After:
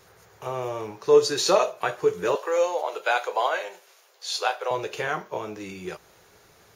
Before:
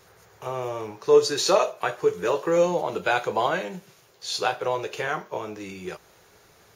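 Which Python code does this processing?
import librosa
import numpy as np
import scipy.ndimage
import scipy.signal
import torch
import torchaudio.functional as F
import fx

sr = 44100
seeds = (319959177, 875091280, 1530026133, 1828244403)

y = fx.highpass(x, sr, hz=480.0, slope=24, at=(2.35, 4.71))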